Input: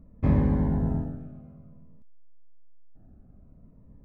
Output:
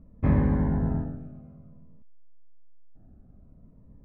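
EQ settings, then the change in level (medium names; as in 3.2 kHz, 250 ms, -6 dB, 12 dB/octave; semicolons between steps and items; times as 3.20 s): dynamic bell 1.6 kHz, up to +6 dB, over -51 dBFS, Q 1.2; distance through air 190 m; 0.0 dB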